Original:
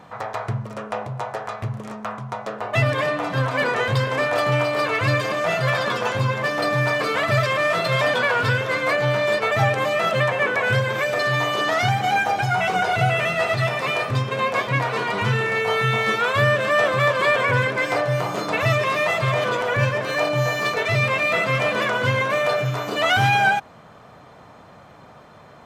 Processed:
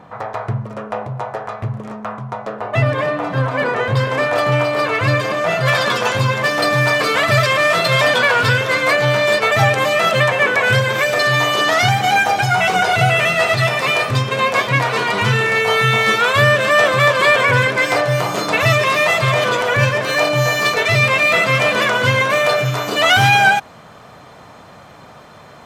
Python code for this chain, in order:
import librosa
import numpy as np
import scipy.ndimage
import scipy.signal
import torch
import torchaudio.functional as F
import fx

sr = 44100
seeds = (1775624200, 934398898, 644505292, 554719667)

y = fx.high_shelf(x, sr, hz=2500.0, db=fx.steps((0.0, -9.0), (3.96, -2.0), (5.65, 6.5)))
y = F.gain(torch.from_numpy(y), 4.5).numpy()